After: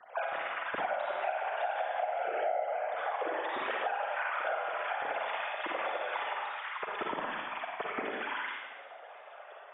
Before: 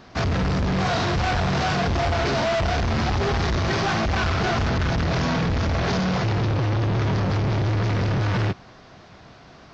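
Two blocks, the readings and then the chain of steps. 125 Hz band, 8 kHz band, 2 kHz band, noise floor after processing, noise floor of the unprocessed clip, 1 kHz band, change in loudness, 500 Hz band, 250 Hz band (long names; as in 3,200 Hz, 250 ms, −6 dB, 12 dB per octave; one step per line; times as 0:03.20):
below −40 dB, can't be measured, −7.5 dB, −50 dBFS, −47 dBFS, −6.5 dB, −12.0 dB, −8.5 dB, −24.5 dB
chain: three sine waves on the formant tracks
random phases in short frames
high-frequency loss of the air 120 metres
four-comb reverb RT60 1.2 s, DRR −1.5 dB
downward compressor 6 to 1, threshold −25 dBFS, peak gain reduction 20.5 dB
level −6 dB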